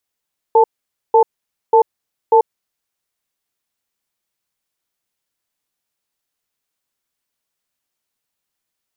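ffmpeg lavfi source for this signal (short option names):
-f lavfi -i "aevalsrc='0.335*(sin(2*PI*456*t)+sin(2*PI*881*t))*clip(min(mod(t,0.59),0.09-mod(t,0.59))/0.005,0,1)':d=1.94:s=44100"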